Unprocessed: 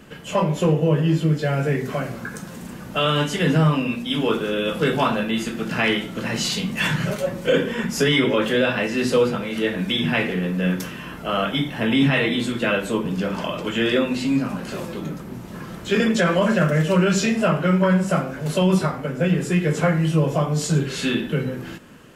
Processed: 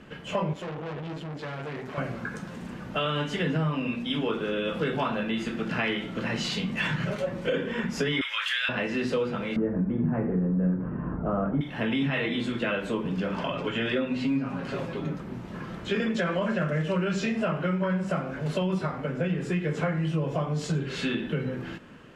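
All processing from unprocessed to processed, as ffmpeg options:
ffmpeg -i in.wav -filter_complex "[0:a]asettb=1/sr,asplit=3[link_01][link_02][link_03];[link_01]atrim=end=0.534[link_04];[link_02]atrim=start=0.53:end=1.98,asetpts=PTS-STARTPTS,afade=type=in:duration=0.004:curve=qsin,afade=type=out:start_time=1.446:duration=0.004:curve=qsin,aeval=exprs='(tanh(28.2*val(0)+0.8)-tanh(0.8))/28.2':channel_layout=same,highpass=frequency=160:poles=1[link_05];[link_03]atrim=start=1.976[link_06];[link_04][link_05]acrossfade=duration=0.004:curve1=hsin:curve2=qsin[link_07];[link_07][link_06]acrossfade=duration=0.004:curve1=qsin:curve2=hsin,asettb=1/sr,asplit=3[link_08][link_09][link_10];[link_08]atrim=end=8.214[link_11];[link_09]atrim=start=8.21:end=8.69,asetpts=PTS-STARTPTS,afade=type=in:duration=0.004:curve=qsin,afade=type=out:start_time=0.476:duration=0.004:curve=qsin,highpass=frequency=1300:width=0.5412,highpass=frequency=1300:width=1.3066,highshelf=frequency=2300:gain=11[link_12];[link_10]atrim=start=8.686[link_13];[link_11][link_12]acrossfade=duration=0.004:curve1=hsin:curve2=qsin[link_14];[link_14][link_13]acrossfade=duration=0.004:curve1=qsin:curve2=hsin,asettb=1/sr,asplit=3[link_15][link_16][link_17];[link_15]atrim=end=9.564[link_18];[link_16]atrim=start=9.56:end=11.61,asetpts=PTS-STARTPTS,afade=type=in:duration=0.004:curve=qsin,afade=type=out:start_time=2.046:duration=0.004:curve=qsin,lowpass=frequency=1300:width=0.5412,lowpass=frequency=1300:width=1.3066,lowshelf=frequency=360:gain=11.5[link_19];[link_17]atrim=start=11.606[link_20];[link_18][link_19]acrossfade=duration=0.004:curve1=hsin:curve2=qsin[link_21];[link_21][link_20]acrossfade=duration=0.004:curve1=qsin:curve2=hsin,asettb=1/sr,asplit=3[link_22][link_23][link_24];[link_22]atrim=end=13.434[link_25];[link_23]atrim=start=13.43:end=15.15,asetpts=PTS-STARTPTS,afade=type=in:duration=0.004:curve=qsin,afade=type=out:start_time=1.716:duration=0.004:curve=qsin,highshelf=frequency=5700:gain=-5.5,aecho=1:1:7.3:0.55,atrim=end_sample=75852[link_26];[link_24]atrim=start=15.146[link_27];[link_25][link_26]acrossfade=duration=0.004:curve1=hsin:curve2=qsin[link_28];[link_28][link_27]acrossfade=duration=0.004:curve1=qsin:curve2=hsin,lowpass=2800,aemphasis=mode=production:type=50fm,acompressor=threshold=-23dB:ratio=3,volume=-2.5dB" out.wav

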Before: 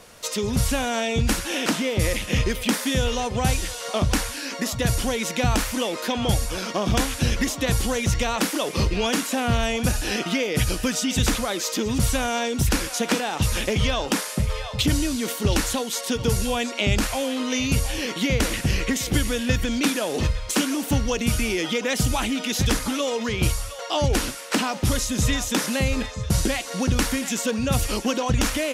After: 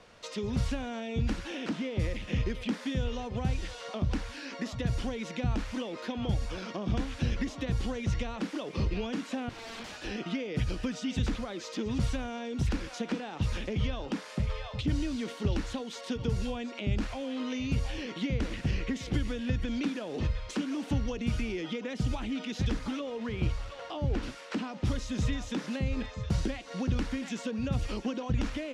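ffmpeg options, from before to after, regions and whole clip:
ffmpeg -i in.wav -filter_complex "[0:a]asettb=1/sr,asplit=3[link_01][link_02][link_03];[link_01]atrim=end=9.494[link_04];[link_02]atrim=start=9.49:end=10.04,asetpts=PTS-STARTPTS,afade=type=in:duration=0.004:curve=qsin,afade=type=out:start_time=0.546:duration=0.004:curve=qsin,acrusher=bits=8:mode=log:mix=0:aa=0.000001,highpass=330,lowpass=7200,aeval=exprs='(mod(20*val(0)+1,2)-1)/20':channel_layout=same[link_05];[link_03]atrim=start=10.036[link_06];[link_04][link_05]acrossfade=duration=0.004:curve1=hsin:curve2=qsin[link_07];[link_07][link_06]acrossfade=duration=0.004:curve1=qsin:curve2=hsin,asettb=1/sr,asplit=3[link_08][link_09][link_10];[link_08]atrim=end=22.994[link_11];[link_09]atrim=start=22.99:end=24.23,asetpts=PTS-STARTPTS,afade=type=in:duration=0.004:curve=qsin,afade=type=out:start_time=1.236:duration=0.004:curve=qsin,lowpass=frequency=3000:poles=1,acrusher=bits=5:mix=0:aa=0.5[link_12];[link_10]atrim=start=24.226[link_13];[link_11][link_12]acrossfade=duration=0.004:curve1=hsin:curve2=qsin[link_14];[link_14][link_13]acrossfade=duration=0.004:curve1=qsin:curve2=hsin,lowpass=4200,acrossover=split=390[link_15][link_16];[link_16]acompressor=threshold=-32dB:ratio=6[link_17];[link_15][link_17]amix=inputs=2:normalize=0,volume=-7dB" out.wav

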